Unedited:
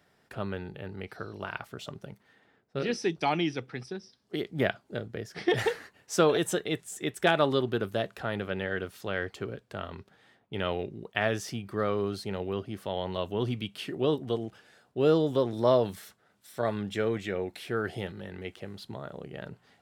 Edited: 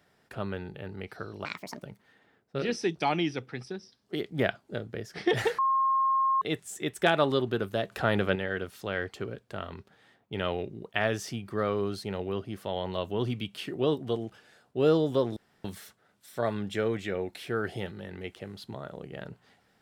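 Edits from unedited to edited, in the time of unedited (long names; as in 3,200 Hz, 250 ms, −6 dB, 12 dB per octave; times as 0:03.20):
0:01.45–0:02.03: play speed 155%
0:05.79–0:06.62: beep over 1,070 Hz −22 dBFS
0:08.12–0:08.56: clip gain +6.5 dB
0:15.57–0:15.85: fill with room tone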